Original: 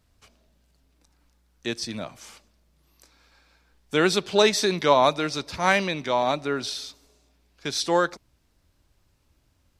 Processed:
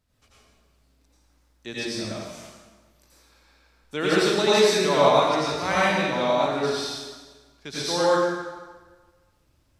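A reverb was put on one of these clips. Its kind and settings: plate-style reverb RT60 1.4 s, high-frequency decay 0.8×, pre-delay 75 ms, DRR -8.5 dB; trim -8 dB

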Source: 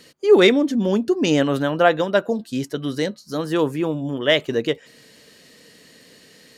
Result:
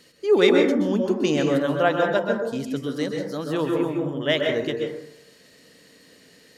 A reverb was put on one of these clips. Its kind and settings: plate-style reverb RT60 0.73 s, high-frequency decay 0.35×, pre-delay 115 ms, DRR 1 dB; trim -5.5 dB

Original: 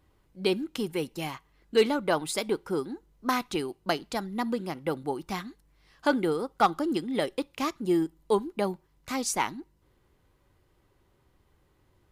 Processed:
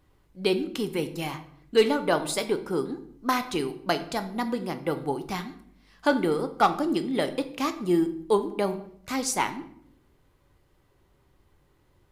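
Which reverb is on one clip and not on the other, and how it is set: simulated room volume 130 m³, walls mixed, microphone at 0.34 m; trim +1.5 dB

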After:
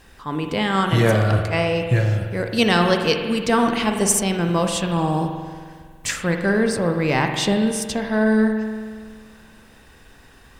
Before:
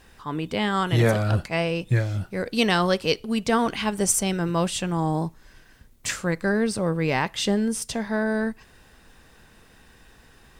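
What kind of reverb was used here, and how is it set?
spring tank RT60 1.8 s, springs 46 ms, chirp 35 ms, DRR 4.5 dB; trim +3 dB

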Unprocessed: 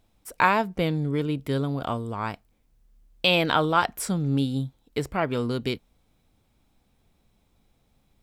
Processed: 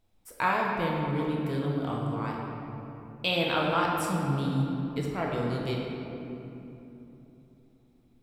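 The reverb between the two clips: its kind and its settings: simulated room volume 170 m³, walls hard, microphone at 0.6 m; trim -8.5 dB

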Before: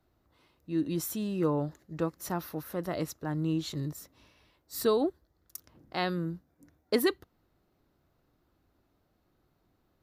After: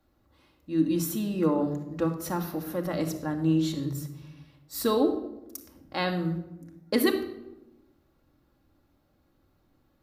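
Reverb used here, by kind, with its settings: simulated room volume 3500 m³, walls furnished, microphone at 2.3 m; trim +1.5 dB

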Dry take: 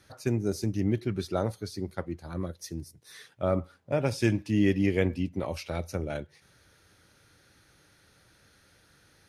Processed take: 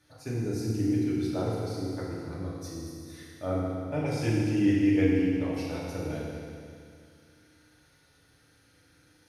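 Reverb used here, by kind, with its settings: FDN reverb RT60 2.3 s, low-frequency decay 1.1×, high-frequency decay 1×, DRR -6.5 dB; trim -9 dB

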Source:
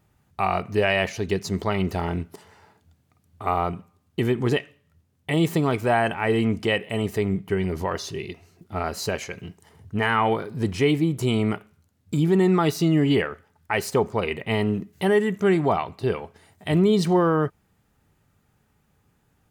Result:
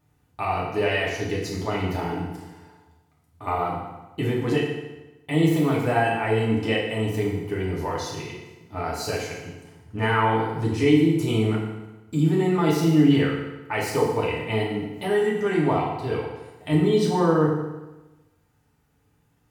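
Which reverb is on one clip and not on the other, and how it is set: FDN reverb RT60 1.1 s, low-frequency decay 1×, high-frequency decay 0.85×, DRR -4.5 dB; trim -6.5 dB

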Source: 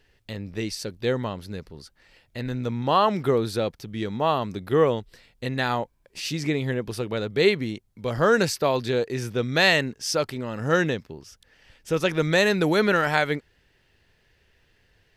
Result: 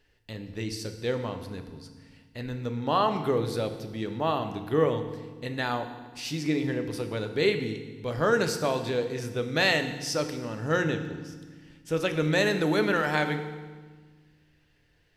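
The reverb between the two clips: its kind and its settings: FDN reverb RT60 1.4 s, low-frequency decay 1.6×, high-frequency decay 0.9×, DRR 6.5 dB; trim -5 dB

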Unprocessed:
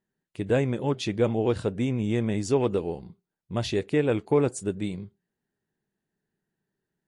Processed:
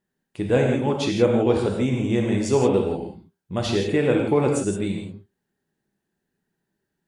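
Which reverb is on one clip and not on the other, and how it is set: gated-style reverb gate 190 ms flat, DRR 0.5 dB; trim +2.5 dB

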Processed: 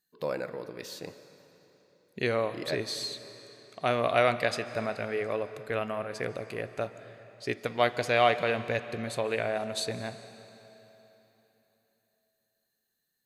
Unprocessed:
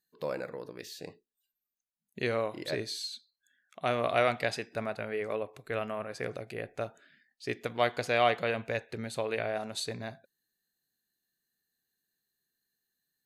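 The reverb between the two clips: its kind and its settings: algorithmic reverb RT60 3.6 s, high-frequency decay 0.9×, pre-delay 105 ms, DRR 13 dB; trim +2.5 dB

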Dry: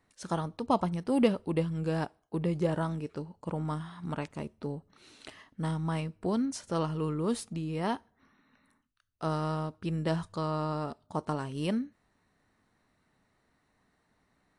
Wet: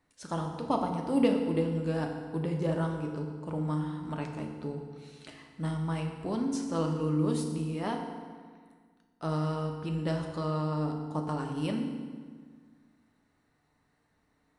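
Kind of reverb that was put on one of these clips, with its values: FDN reverb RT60 1.7 s, low-frequency decay 1.2×, high-frequency decay 0.75×, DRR 2 dB; trim -3 dB

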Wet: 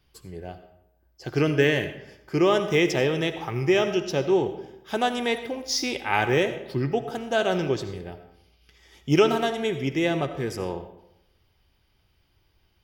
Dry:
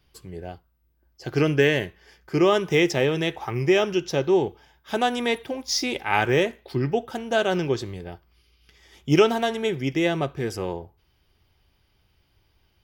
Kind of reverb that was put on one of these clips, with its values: algorithmic reverb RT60 0.82 s, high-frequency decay 0.65×, pre-delay 40 ms, DRR 10 dB; trim -1.5 dB

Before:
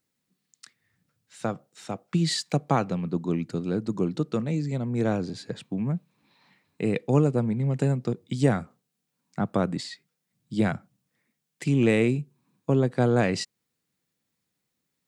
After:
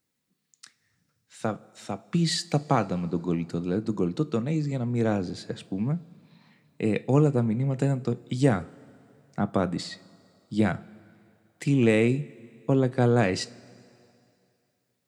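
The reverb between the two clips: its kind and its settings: two-slope reverb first 0.25 s, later 2.6 s, from -18 dB, DRR 12.5 dB

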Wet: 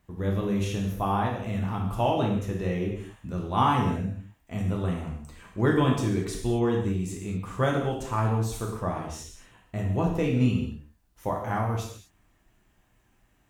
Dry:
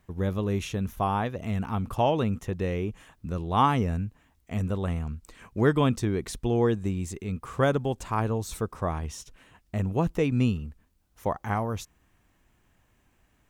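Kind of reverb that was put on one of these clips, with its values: gated-style reverb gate 270 ms falling, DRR -1.5 dB; trim -3.5 dB

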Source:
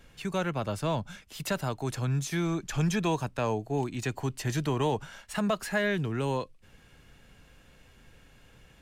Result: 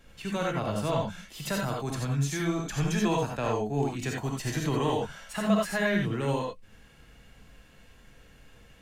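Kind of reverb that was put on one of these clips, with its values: gated-style reverb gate 110 ms rising, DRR -1 dB; trim -2 dB

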